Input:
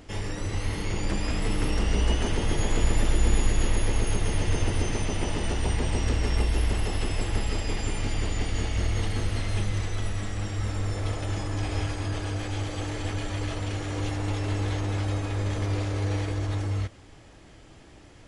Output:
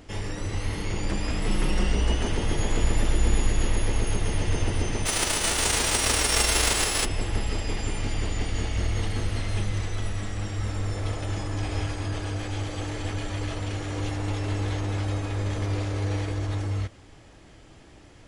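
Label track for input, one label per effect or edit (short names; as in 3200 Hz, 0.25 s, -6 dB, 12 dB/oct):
1.470000	1.920000	comb 5.5 ms
5.050000	7.040000	spectral whitening exponent 0.3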